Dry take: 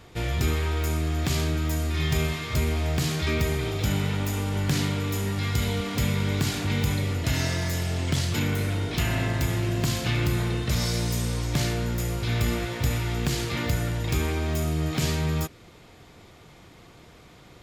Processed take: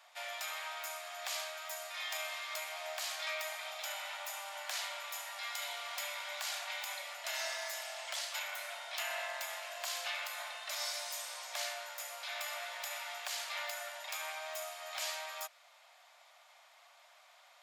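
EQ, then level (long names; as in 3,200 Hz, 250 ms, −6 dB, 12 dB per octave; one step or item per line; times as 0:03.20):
Butterworth high-pass 580 Hz 96 dB per octave
−7.0 dB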